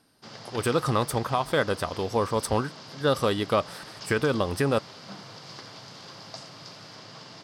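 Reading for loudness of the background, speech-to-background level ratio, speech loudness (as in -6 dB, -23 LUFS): -42.5 LUFS, 15.5 dB, -27.0 LUFS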